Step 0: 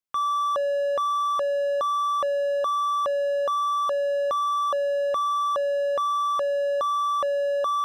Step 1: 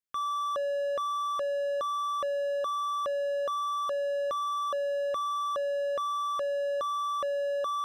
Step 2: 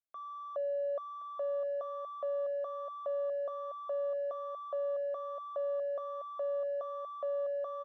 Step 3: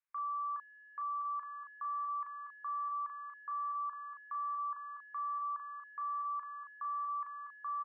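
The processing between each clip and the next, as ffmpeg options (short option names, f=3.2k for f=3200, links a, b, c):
-af "equalizer=f=860:w=3.2:g=-12,volume=-4dB"
-af "bandpass=f=670:t=q:w=4.5:csg=0,aecho=1:1:1071:0.376,volume=1.5dB"
-filter_complex "[0:a]asuperpass=centerf=1500:order=20:qfactor=0.96,asplit=2[a][b];[b]adelay=36,volume=-3.5dB[c];[a][c]amix=inputs=2:normalize=0,volume=5.5dB"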